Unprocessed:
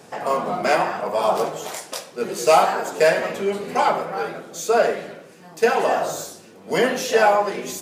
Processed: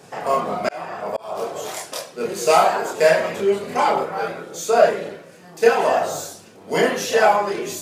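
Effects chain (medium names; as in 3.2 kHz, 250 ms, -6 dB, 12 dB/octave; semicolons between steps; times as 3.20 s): chorus voices 6, 0.46 Hz, delay 29 ms, depth 1.6 ms; 0.60–1.56 s: slow attack 500 ms; trim +4 dB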